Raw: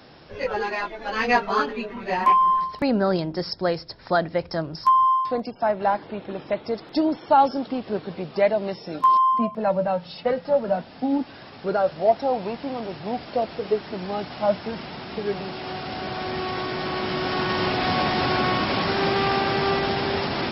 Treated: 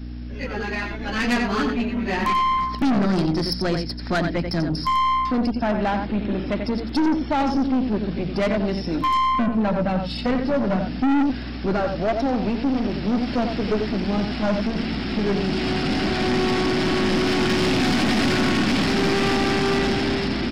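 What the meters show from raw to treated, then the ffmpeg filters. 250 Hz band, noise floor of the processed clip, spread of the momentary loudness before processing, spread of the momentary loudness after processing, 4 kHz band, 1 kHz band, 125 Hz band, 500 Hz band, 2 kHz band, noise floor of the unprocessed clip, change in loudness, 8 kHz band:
+7.5 dB, -30 dBFS, 12 LU, 6 LU, +3.5 dB, -3.0 dB, +7.0 dB, -1.0 dB, +2.0 dB, -44 dBFS, +1.5 dB, n/a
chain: -af "aecho=1:1:89:0.398,dynaudnorm=f=170:g=9:m=11.5dB,aeval=exprs='val(0)+0.0224*(sin(2*PI*60*n/s)+sin(2*PI*2*60*n/s)/2+sin(2*PI*3*60*n/s)/3+sin(2*PI*4*60*n/s)/4+sin(2*PI*5*60*n/s)/5)':c=same,equalizer=f=125:t=o:w=1:g=-4,equalizer=f=250:t=o:w=1:g=9,equalizer=f=500:t=o:w=1:g=-10,equalizer=f=1k:t=o:w=1:g=-9,equalizer=f=4k:t=o:w=1:g=-4,aeval=exprs='(tanh(10*val(0)+0.3)-tanh(0.3))/10':c=same,bandreject=f=45.26:t=h:w=4,bandreject=f=90.52:t=h:w=4,bandreject=f=135.78:t=h:w=4,bandreject=f=181.04:t=h:w=4,bandreject=f=226.3:t=h:w=4,volume=3dB"

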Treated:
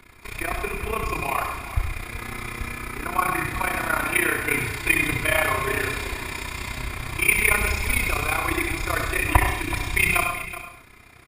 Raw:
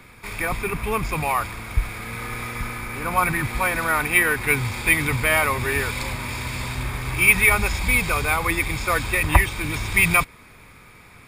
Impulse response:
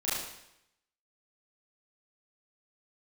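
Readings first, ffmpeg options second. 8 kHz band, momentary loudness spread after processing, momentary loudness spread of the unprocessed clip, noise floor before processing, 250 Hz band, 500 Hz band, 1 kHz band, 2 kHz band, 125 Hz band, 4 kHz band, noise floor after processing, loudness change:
-2.0 dB, 12 LU, 12 LU, -47 dBFS, -2.0 dB, -2.0 dB, -2.0 dB, -2.5 dB, -3.5 dB, -2.0 dB, -48 dBFS, -2.5 dB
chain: -filter_complex "[0:a]aecho=1:1:2.9:0.46,tremolo=f=31:d=0.919,aecho=1:1:376:0.211,asplit=2[a][b];[1:a]atrim=start_sample=2205,afade=t=out:st=0.28:d=0.01,atrim=end_sample=12789,adelay=30[c];[b][c]afir=irnorm=-1:irlink=0,volume=-10dB[d];[a][d]amix=inputs=2:normalize=0,volume=-1dB"

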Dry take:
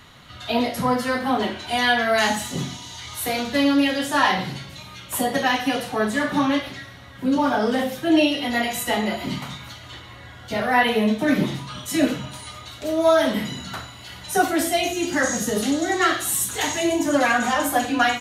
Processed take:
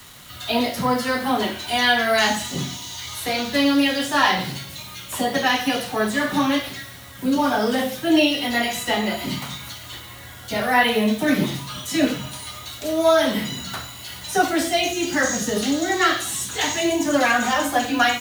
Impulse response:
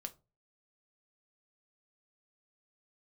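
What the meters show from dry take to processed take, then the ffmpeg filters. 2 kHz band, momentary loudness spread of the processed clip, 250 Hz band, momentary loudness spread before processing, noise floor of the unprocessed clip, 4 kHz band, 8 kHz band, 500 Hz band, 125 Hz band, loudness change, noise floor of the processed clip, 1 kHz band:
+1.5 dB, 15 LU, 0.0 dB, 16 LU, -42 dBFS, +3.5 dB, +0.5 dB, 0.0 dB, 0.0 dB, +0.5 dB, -39 dBFS, +0.5 dB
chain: -filter_complex "[0:a]acrossover=split=130|1200|6000[a][b][c][d];[d]acompressor=threshold=-50dB:ratio=6[e];[a][b][c][e]amix=inputs=4:normalize=0,acrusher=bits=7:mix=0:aa=0.5,crystalizer=i=2:c=0"

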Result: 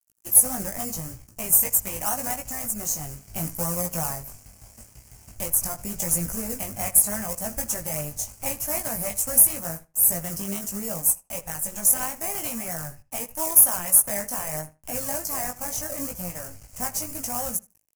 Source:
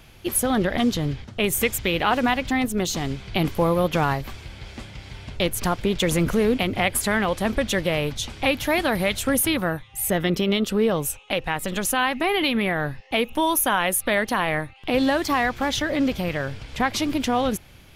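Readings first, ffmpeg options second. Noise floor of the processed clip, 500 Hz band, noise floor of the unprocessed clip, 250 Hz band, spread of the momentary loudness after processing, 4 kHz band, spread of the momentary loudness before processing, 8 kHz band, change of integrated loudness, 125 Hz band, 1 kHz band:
-58 dBFS, -11.5 dB, -48 dBFS, -12.5 dB, 15 LU, -14.0 dB, 7 LU, +8.0 dB, 0.0 dB, -8.5 dB, -10.0 dB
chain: -filter_complex "[0:a]bandreject=f=430:w=12,asplit=2[a][b];[b]acrusher=samples=25:mix=1:aa=0.000001:lfo=1:lforange=15:lforate=3.2,volume=-4dB[c];[a][c]amix=inputs=2:normalize=0,firequalizer=gain_entry='entry(150,0);entry(350,-10);entry(630,2);entry(910,-1);entry(1900,-3);entry(3800,0)':delay=0.05:min_phase=1,aeval=exprs='sgn(val(0))*max(abs(val(0))-0.0119,0)':c=same,aexciter=amount=10.1:drive=5.1:freq=5.8k,flanger=delay=17:depth=3.2:speed=0.8,equalizer=f=3.5k:t=o:w=0.32:g=-13.5,asplit=2[d][e];[e]adelay=78,lowpass=f=3.4k:p=1,volume=-18dB,asplit=2[f][g];[g]adelay=78,lowpass=f=3.4k:p=1,volume=0.16[h];[f][h]amix=inputs=2:normalize=0[i];[d][i]amix=inputs=2:normalize=0,volume=-8.5dB"

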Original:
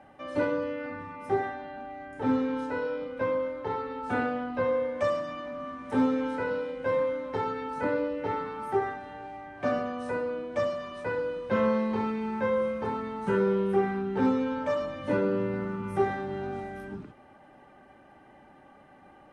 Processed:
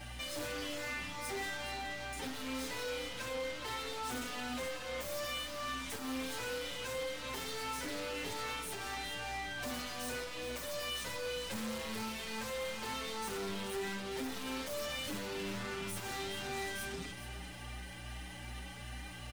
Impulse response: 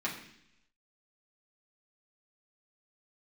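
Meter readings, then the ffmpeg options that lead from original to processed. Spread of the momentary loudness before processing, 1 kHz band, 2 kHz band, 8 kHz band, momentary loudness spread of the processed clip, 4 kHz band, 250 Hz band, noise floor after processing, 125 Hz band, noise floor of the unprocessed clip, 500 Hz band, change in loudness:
11 LU, -9.5 dB, -3.0 dB, n/a, 6 LU, +10.0 dB, -13.5 dB, -46 dBFS, -9.0 dB, -55 dBFS, -13.5 dB, -9.5 dB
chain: -filter_complex "[0:a]highshelf=f=2.2k:g=8,acrossover=split=210|360|2700[a][b][c][d];[c]alimiter=level_in=4dB:limit=-24dB:level=0:latency=1,volume=-4dB[e];[d]aeval=exprs='0.0224*sin(PI/2*7.08*val(0)/0.0224)':c=same[f];[a][b][e][f]amix=inputs=4:normalize=0,aeval=exprs='val(0)+0.00501*(sin(2*PI*60*n/s)+sin(2*PI*2*60*n/s)/2+sin(2*PI*3*60*n/s)/3+sin(2*PI*4*60*n/s)/4+sin(2*PI*5*60*n/s)/5)':c=same,aeval=exprs='(tanh(89.1*val(0)+0.2)-tanh(0.2))/89.1':c=same,aecho=1:1:418:0.266,asplit=2[g][h];[h]adelay=6.5,afreqshift=2.5[i];[g][i]amix=inputs=2:normalize=1,volume=3dB"

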